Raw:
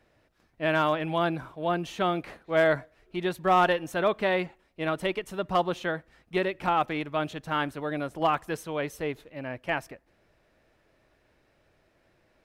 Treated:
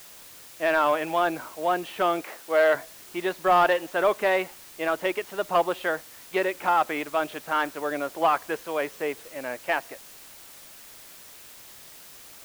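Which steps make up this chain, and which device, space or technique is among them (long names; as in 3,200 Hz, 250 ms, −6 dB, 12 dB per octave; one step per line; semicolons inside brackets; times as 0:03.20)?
tape answering machine (band-pass filter 390–2,900 Hz; soft clipping −16 dBFS, distortion −18 dB; tape wow and flutter; white noise bed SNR 20 dB)
0:02.22–0:02.75: Bessel high-pass filter 200 Hz, order 2
level +5 dB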